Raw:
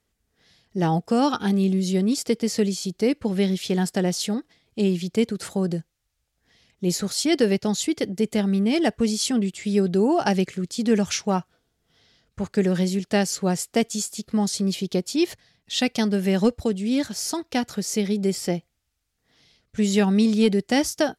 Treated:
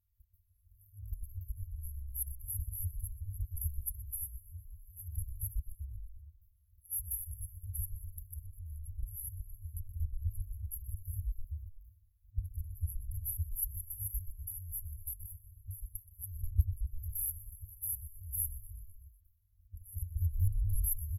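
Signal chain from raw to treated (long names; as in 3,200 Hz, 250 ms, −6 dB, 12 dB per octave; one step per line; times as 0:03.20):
output level in coarse steps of 18 dB
echo with shifted repeats 124 ms, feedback 62%, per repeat −60 Hz, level −18 dB
brick-wall band-stop 100–11,000 Hz
level +15 dB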